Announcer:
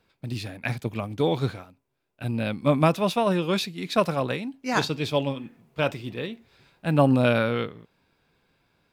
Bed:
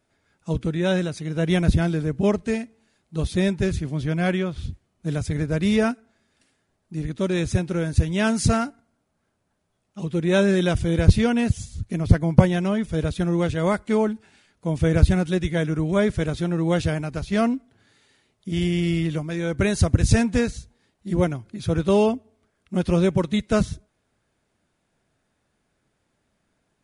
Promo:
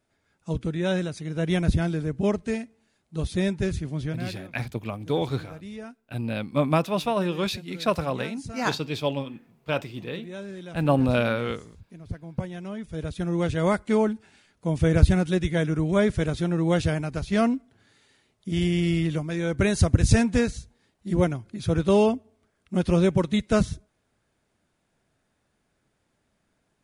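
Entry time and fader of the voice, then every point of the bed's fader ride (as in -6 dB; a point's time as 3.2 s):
3.90 s, -2.0 dB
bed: 4.06 s -3.5 dB
4.36 s -19 dB
12.18 s -19 dB
13.56 s -1 dB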